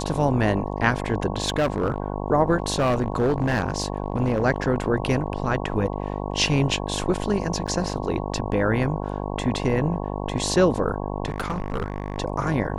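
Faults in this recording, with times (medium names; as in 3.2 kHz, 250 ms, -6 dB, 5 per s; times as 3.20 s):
buzz 50 Hz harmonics 22 -29 dBFS
1.44–2.00 s: clipped -17 dBFS
2.60–4.43 s: clipped -16.5 dBFS
7.67–7.68 s: dropout 7.3 ms
11.26–12.18 s: clipped -21.5 dBFS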